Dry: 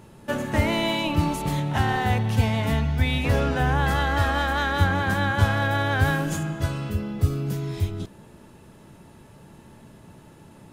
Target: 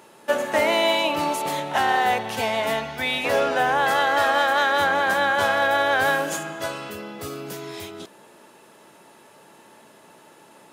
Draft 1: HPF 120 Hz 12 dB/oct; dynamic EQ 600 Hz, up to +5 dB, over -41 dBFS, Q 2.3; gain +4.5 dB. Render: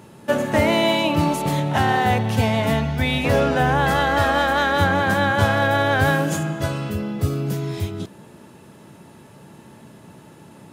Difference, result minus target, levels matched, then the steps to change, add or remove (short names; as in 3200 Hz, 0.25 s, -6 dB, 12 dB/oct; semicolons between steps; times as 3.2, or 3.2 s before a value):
125 Hz band +18.0 dB
change: HPF 460 Hz 12 dB/oct